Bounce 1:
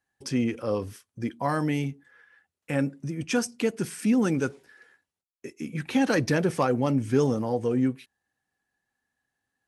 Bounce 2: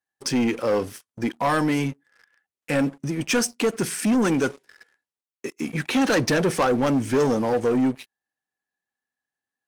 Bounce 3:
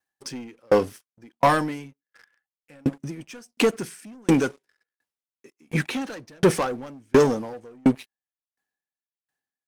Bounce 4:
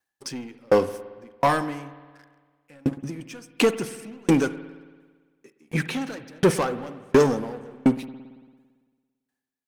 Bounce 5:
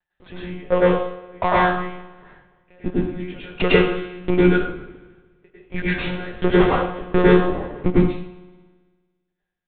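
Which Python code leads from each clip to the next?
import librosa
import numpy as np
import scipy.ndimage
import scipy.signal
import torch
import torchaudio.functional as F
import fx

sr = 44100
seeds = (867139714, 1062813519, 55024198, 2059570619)

y1 = fx.highpass(x, sr, hz=270.0, slope=6)
y1 = fx.leveller(y1, sr, passes=3)
y1 = F.gain(torch.from_numpy(y1), -1.5).numpy()
y2 = fx.tremolo_decay(y1, sr, direction='decaying', hz=1.4, depth_db=40)
y2 = F.gain(torch.from_numpy(y2), 7.0).numpy()
y3 = fx.rev_spring(y2, sr, rt60_s=1.5, pass_ms=(56,), chirp_ms=35, drr_db=13.0)
y3 = fx.rider(y3, sr, range_db=3, speed_s=2.0)
y4 = fx.lpc_monotone(y3, sr, seeds[0], pitch_hz=180.0, order=10)
y4 = fx.rev_plate(y4, sr, seeds[1], rt60_s=0.53, hf_ratio=0.95, predelay_ms=90, drr_db=-8.0)
y4 = F.gain(torch.from_numpy(y4), -1.0).numpy()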